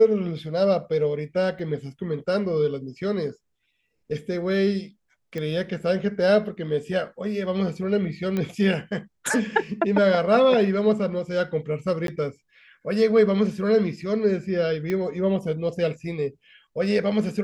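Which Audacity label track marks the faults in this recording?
1.590000	1.590000	dropout 2.6 ms
5.380000	5.380000	pop -19 dBFS
8.370000	8.370000	pop -15 dBFS
12.070000	12.080000	dropout 12 ms
14.900000	14.900000	pop -16 dBFS

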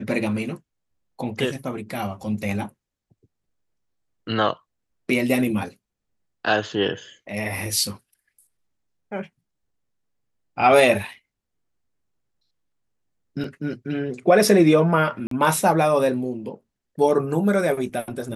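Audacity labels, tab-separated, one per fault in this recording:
13.440000	13.440000	dropout 2.4 ms
15.270000	15.310000	dropout 43 ms

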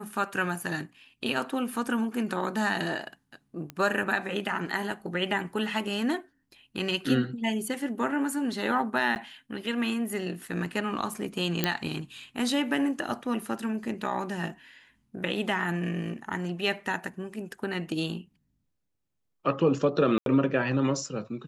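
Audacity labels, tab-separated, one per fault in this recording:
3.700000	3.700000	pop -22 dBFS
9.150000	9.160000	dropout 9.3 ms
11.640000	11.640000	pop -8 dBFS
20.180000	20.260000	dropout 82 ms

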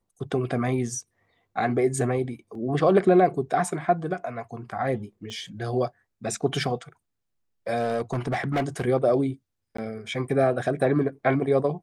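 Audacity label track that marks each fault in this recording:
2.550000	2.550000	dropout 2.4 ms
5.300000	5.300000	pop -25 dBFS
7.760000	8.850000	clipped -21 dBFS
9.770000	9.780000	dropout 14 ms

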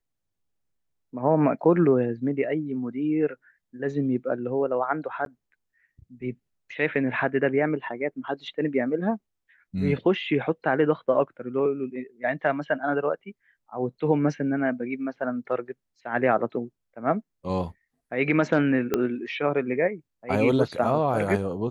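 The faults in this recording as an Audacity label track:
5.250000	5.260000	dropout 12 ms
18.940000	18.940000	pop -10 dBFS

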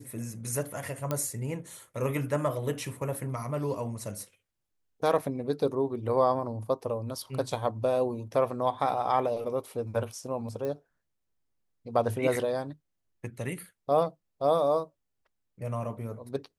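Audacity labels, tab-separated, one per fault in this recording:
1.110000	1.110000	pop -15 dBFS
10.650000	10.650000	pop -23 dBFS

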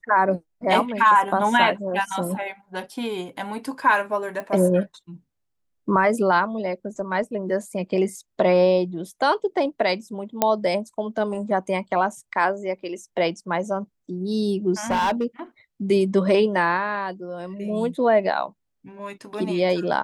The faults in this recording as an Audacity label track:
4.400000	4.400000	pop -19 dBFS
10.420000	10.420000	pop -4 dBFS
14.900000	15.240000	clipped -17.5 dBFS

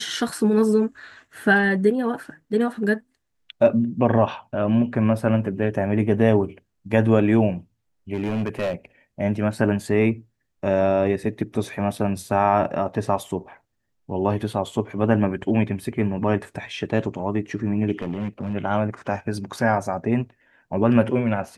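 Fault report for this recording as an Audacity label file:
8.140000	8.740000	clipped -20 dBFS
17.990000	18.550000	clipped -21.5 dBFS

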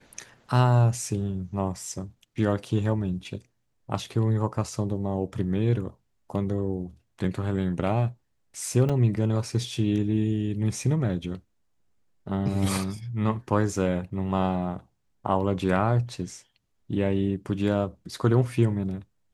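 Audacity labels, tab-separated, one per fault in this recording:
8.890000	8.900000	dropout 5.3 ms

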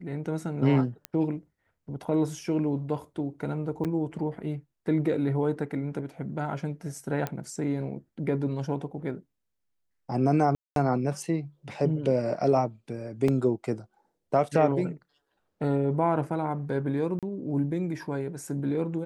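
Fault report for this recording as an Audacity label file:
1.050000	1.050000	pop -17 dBFS
3.840000	3.850000	dropout 7.8 ms
7.270000	7.270000	pop -16 dBFS
10.550000	10.760000	dropout 212 ms
13.280000	13.280000	dropout 3.7 ms
17.190000	17.230000	dropout 37 ms

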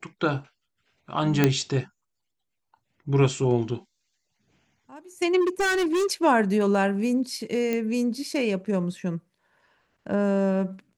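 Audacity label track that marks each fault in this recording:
1.440000	1.440000	pop -5 dBFS
5.400000	6.070000	clipped -20.5 dBFS
7.730000	7.730000	pop -14 dBFS

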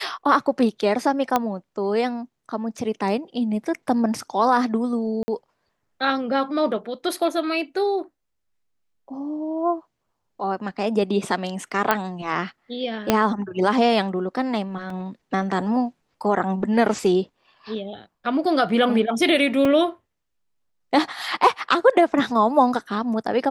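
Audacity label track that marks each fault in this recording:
1.360000	1.360000	pop -6 dBFS
5.230000	5.280000	dropout 50 ms
11.910000	11.910000	pop -4 dBFS
13.100000	13.100000	pop -2 dBFS
14.900000	14.900000	dropout 2.7 ms
19.650000	19.650000	dropout 2.9 ms

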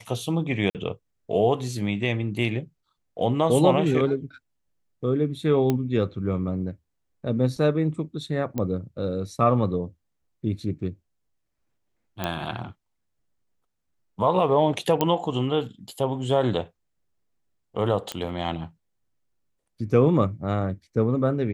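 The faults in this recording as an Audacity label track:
0.700000	0.750000	dropout 48 ms
5.700000	5.700000	pop -11 dBFS
8.580000	8.580000	pop -15 dBFS
12.240000	12.240000	pop -12 dBFS
15.010000	15.010000	pop -8 dBFS
18.120000	18.120000	pop -14 dBFS

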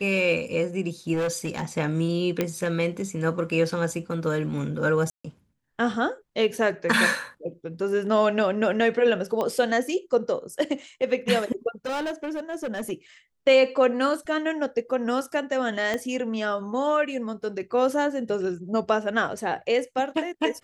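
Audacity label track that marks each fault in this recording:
1.130000	1.650000	clipped -22.5 dBFS
2.410000	2.410000	pop -10 dBFS
5.100000	5.250000	dropout 145 ms
9.410000	9.410000	pop -15 dBFS
11.860000	12.920000	clipped -26 dBFS
15.940000	15.940000	pop -14 dBFS

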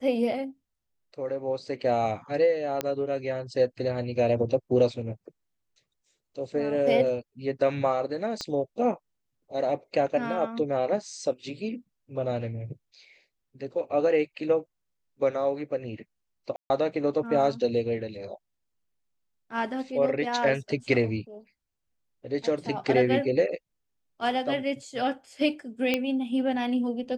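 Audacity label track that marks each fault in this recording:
2.810000	2.810000	pop -13 dBFS
8.410000	8.410000	pop -19 dBFS
16.560000	16.700000	dropout 140 ms
25.940000	25.940000	pop -11 dBFS

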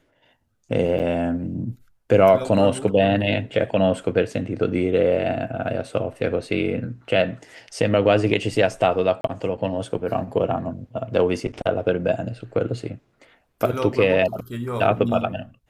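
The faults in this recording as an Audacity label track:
0.990000	1.000000	dropout 7.7 ms
9.210000	9.240000	dropout 32 ms

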